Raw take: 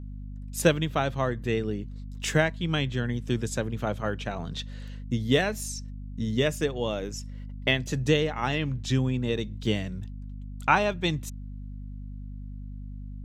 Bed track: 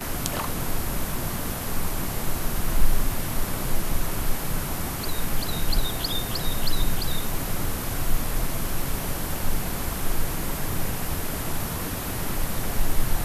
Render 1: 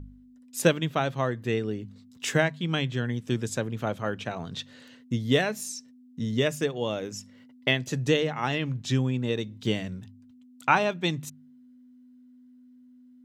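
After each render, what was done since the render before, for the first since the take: de-hum 50 Hz, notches 4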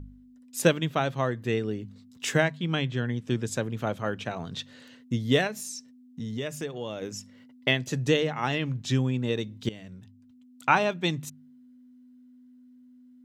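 2.57–3.48 s: treble shelf 7.9 kHz -10.5 dB; 5.47–7.02 s: compression 2:1, threshold -34 dBFS; 9.69–10.84 s: fade in equal-power, from -18.5 dB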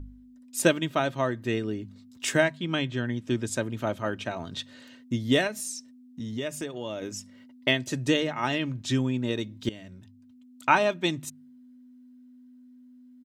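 dynamic bell 8.7 kHz, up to +6 dB, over -60 dBFS, Q 4.4; comb 3.2 ms, depth 42%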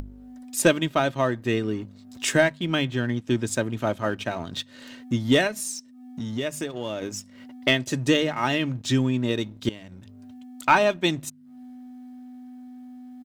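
upward compressor, threshold -35 dBFS; waveshaping leveller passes 1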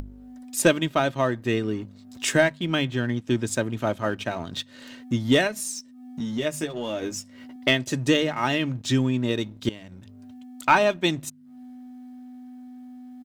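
5.75–7.56 s: doubling 13 ms -5 dB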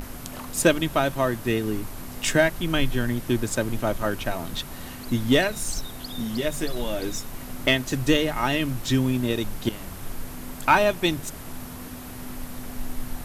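add bed track -9.5 dB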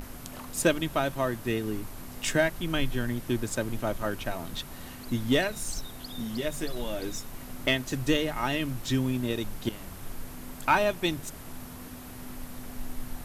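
trim -5 dB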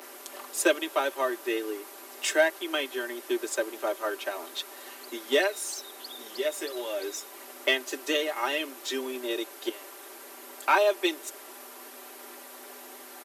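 steep high-pass 280 Hz 96 dB/octave; comb 5.1 ms, depth 68%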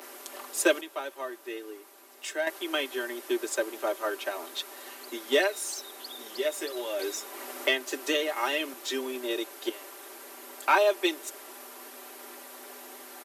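0.81–2.47 s: gain -8.5 dB; 6.99–8.74 s: three bands compressed up and down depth 40%

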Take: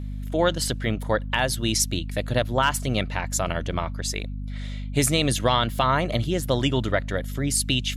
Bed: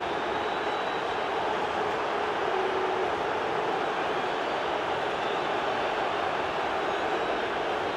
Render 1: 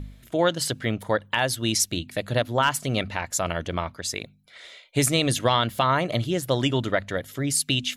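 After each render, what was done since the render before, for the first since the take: de-hum 50 Hz, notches 5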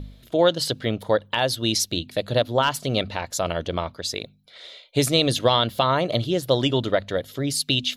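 graphic EQ 500/2000/4000/8000 Hz +5/-5/+8/-6 dB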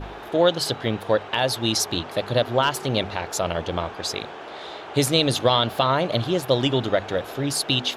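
add bed -8.5 dB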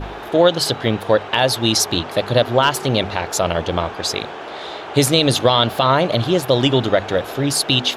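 trim +6 dB; peak limiter -3 dBFS, peak gain reduction 3 dB

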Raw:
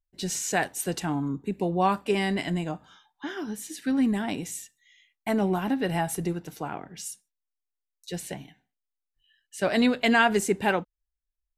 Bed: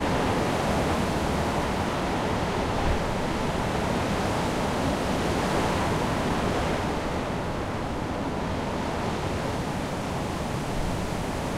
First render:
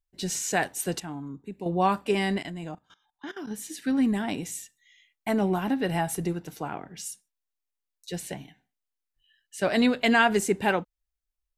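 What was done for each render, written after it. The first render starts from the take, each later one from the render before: 1.00–1.66 s: gain -8.5 dB; 2.38–3.51 s: level held to a coarse grid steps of 18 dB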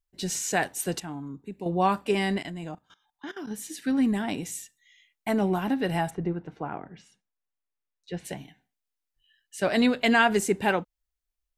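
6.09–8.24 s: low-pass 1.6 kHz -> 2.7 kHz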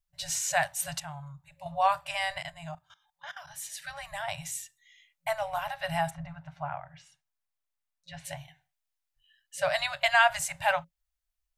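FFT band-reject 170–550 Hz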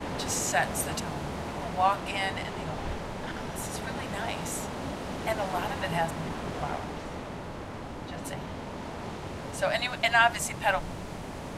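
add bed -9.5 dB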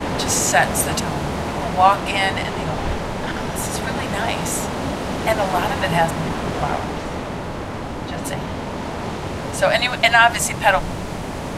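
trim +11 dB; peak limiter -1 dBFS, peak gain reduction 3 dB

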